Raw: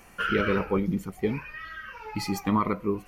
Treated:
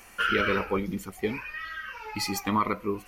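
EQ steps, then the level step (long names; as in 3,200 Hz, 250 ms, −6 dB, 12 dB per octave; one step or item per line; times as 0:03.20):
tilt shelving filter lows −4 dB, about 1,200 Hz
parametric band 150 Hz −11.5 dB 0.39 octaves
+1.5 dB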